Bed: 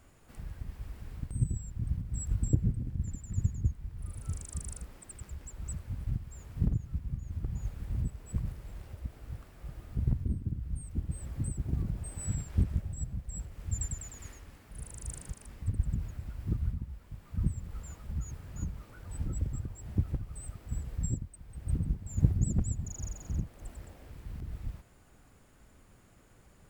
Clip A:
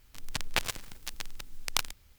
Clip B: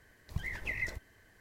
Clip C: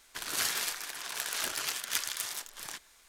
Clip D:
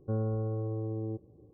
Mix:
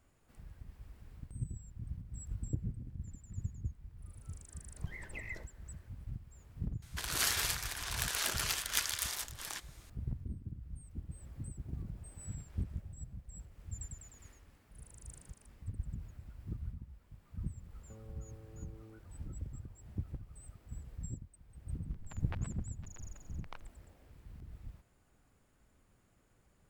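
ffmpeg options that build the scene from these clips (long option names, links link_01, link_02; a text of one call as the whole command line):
ffmpeg -i bed.wav -i cue0.wav -i cue1.wav -i cue2.wav -i cue3.wav -filter_complex "[0:a]volume=-10dB[link_01];[2:a]tiltshelf=frequency=1500:gain=4.5[link_02];[4:a]acompressor=threshold=-38dB:ratio=6:attack=3.2:release=140:knee=1:detection=peak[link_03];[1:a]lowpass=1500[link_04];[link_02]atrim=end=1.4,asetpts=PTS-STARTPTS,volume=-8dB,afade=type=in:duration=0.004:curve=hsin,afade=type=out:start_time=1.396:duration=0.004:curve=hsin,adelay=4480[link_05];[3:a]atrim=end=3.08,asetpts=PTS-STARTPTS,volume=-1dB,afade=type=in:duration=0.004:curve=hsin,afade=type=out:start_time=3.076:duration=0.004:curve=hsin,adelay=300762S[link_06];[link_03]atrim=end=1.53,asetpts=PTS-STARTPTS,volume=-12.5dB,afade=type=in:duration=0.004:curve=hsin,afade=type=out:start_time=1.526:duration=0.004:curve=hsin,adelay=17820[link_07];[link_04]atrim=end=2.18,asetpts=PTS-STARTPTS,volume=-13.5dB,afade=type=in:duration=0.004:curve=hsin,afade=type=out:start_time=2.176:duration=0.004:curve=hsin,adelay=21760[link_08];[link_01][link_05][link_06][link_07][link_08]amix=inputs=5:normalize=0" out.wav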